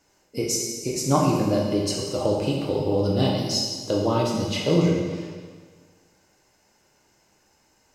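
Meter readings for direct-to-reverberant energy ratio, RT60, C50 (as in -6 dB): -2.5 dB, 1.6 s, 1.5 dB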